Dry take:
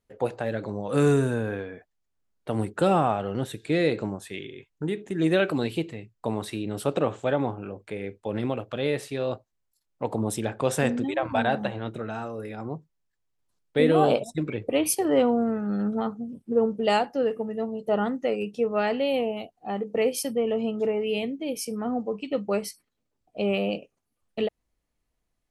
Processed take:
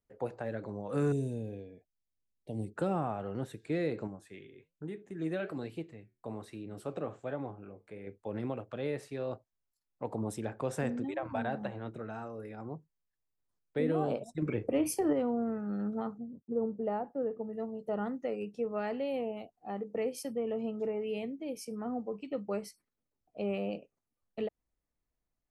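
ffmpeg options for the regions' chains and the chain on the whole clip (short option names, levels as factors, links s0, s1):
-filter_complex "[0:a]asettb=1/sr,asplit=3[s0][s1][s2];[s0]atrim=end=1.124[s3];[s1]atrim=start=1.12:end=2.76,asetpts=PTS-STARTPTS,afade=t=in:d=0.004:c=qsin,afade=t=out:st=1.636:d=0.004:c=qsin,asuperstop=centerf=1300:order=4:qfactor=0.56,equalizer=f=420:t=o:w=1.5:g=-3.5[s4];[s2]atrim=start=2.756[s5];[s3][s4]acrossfade=d=0.004:c1=hsin:c2=qsin[s6];[s6][s5]acrossfade=d=0.004:c1=qsin:c2=hsin,asettb=1/sr,asplit=3[s7][s8][s9];[s7]atrim=end=4.074[s10];[s8]atrim=start=4.07:end=8.07,asetpts=PTS-STARTPTS,afade=t=in:d=0.004:c=qsin,afade=t=out:st=3.996:d=0.004:c=qsin,flanger=delay=6:depth=6.2:regen=-75:speed=1.2:shape=sinusoidal,bandreject=f=920:w=16[s11];[s9]atrim=start=8.066[s12];[s10][s11]acrossfade=d=0.004:c1=hsin:c2=qsin[s13];[s13][s12]acrossfade=d=0.004:c1=qsin:c2=hsin,asettb=1/sr,asplit=3[s14][s15][s16];[s14]atrim=end=14.424[s17];[s15]atrim=start=14.42:end=15.13,asetpts=PTS-STARTPTS,afade=t=in:d=0.004:c=qsin,afade=t=out:st=0.706:d=0.004:c=qsin,acontrast=59,bandreject=f=3900:w=5.7,asplit=2[s18][s19];[s19]adelay=33,volume=0.2[s20];[s18][s20]amix=inputs=2:normalize=0,atrim=end_sample=31311[s21];[s16]atrim=start=15.126[s22];[s17][s21]acrossfade=d=0.004:c1=hsin:c2=qsin[s23];[s23][s22]acrossfade=d=0.004:c1=qsin:c2=hsin,asettb=1/sr,asplit=3[s24][s25][s26];[s24]atrim=end=16.184[s27];[s25]atrim=start=16.18:end=17.53,asetpts=PTS-STARTPTS,afade=t=in:d=0.004:c=qsin,afade=t=out:st=1.346:d=0.004:c=qsin,lowpass=1100,agate=range=0.0224:threshold=0.00562:ratio=3:release=100:detection=peak[s28];[s26]atrim=start=17.526[s29];[s27][s28]acrossfade=d=0.004:c1=hsin:c2=qsin[s30];[s30][s29]acrossfade=d=0.004:c1=qsin:c2=hsin,highshelf=f=8400:g=-9,acrossover=split=340[s31][s32];[s32]acompressor=threshold=0.0631:ratio=4[s33];[s31][s33]amix=inputs=2:normalize=0,equalizer=f=3300:t=o:w=0.81:g=-7,volume=0.398"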